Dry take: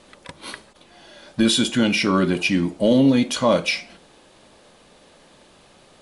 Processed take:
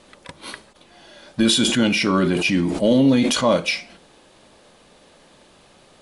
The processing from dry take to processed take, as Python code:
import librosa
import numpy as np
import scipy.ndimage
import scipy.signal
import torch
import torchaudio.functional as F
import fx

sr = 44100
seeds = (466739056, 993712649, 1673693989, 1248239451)

y = fx.sustainer(x, sr, db_per_s=39.0, at=(1.47, 3.51), fade=0.02)